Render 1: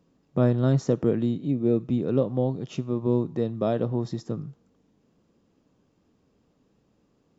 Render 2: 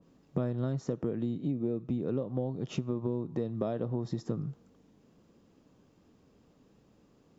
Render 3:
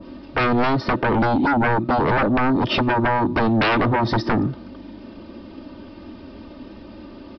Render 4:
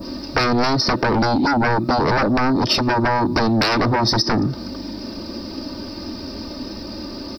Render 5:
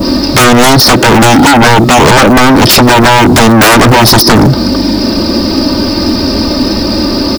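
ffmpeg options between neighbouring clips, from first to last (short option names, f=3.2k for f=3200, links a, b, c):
-af "acompressor=threshold=-31dB:ratio=12,adynamicequalizer=threshold=0.00158:dfrequency=1900:dqfactor=0.7:tfrequency=1900:tqfactor=0.7:attack=5:release=100:ratio=0.375:range=2:mode=cutabove:tftype=highshelf,volume=3dB"
-af "aecho=1:1:3.3:1,aresample=11025,aeval=exprs='0.141*sin(PI/2*6.31*val(0)/0.141)':c=same,aresample=44100,volume=2dB"
-af "aexciter=amount=11:drive=8.5:freq=4.9k,acompressor=threshold=-24dB:ratio=5,volume=7.5dB"
-filter_complex "[0:a]asplit=2[a][b];[b]acrusher=bits=3:mode=log:mix=0:aa=0.000001,volume=-6.5dB[c];[a][c]amix=inputs=2:normalize=0,aeval=exprs='1*sin(PI/2*5.62*val(0)/1)':c=same,volume=-1dB"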